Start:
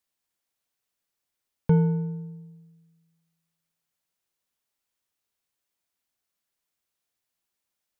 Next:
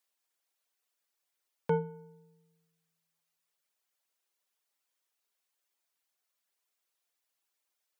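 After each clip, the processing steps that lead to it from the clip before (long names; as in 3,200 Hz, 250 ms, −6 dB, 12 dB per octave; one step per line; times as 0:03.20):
high-pass filter 400 Hz 12 dB per octave
reverb reduction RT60 0.64 s
level +1.5 dB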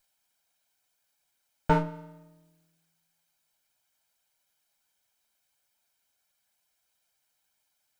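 lower of the sound and its delayed copy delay 1.3 ms
level +8.5 dB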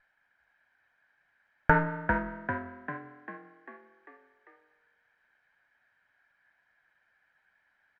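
downward compressor 6 to 1, threshold −25 dBFS, peak gain reduction 8 dB
low-pass with resonance 1,700 Hz, resonance Q 6.9
on a send: echo with shifted repeats 396 ms, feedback 54%, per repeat +44 Hz, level −5.5 dB
on the sum: level +4.5 dB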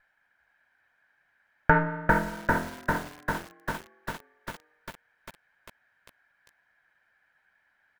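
feedback echo at a low word length 398 ms, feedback 80%, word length 7 bits, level −4.5 dB
level +2 dB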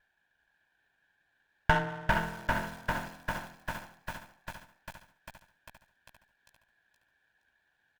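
lower of the sound and its delayed copy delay 1.2 ms
on a send: repeating echo 470 ms, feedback 24%, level −10 dB
on the sum: level −4.5 dB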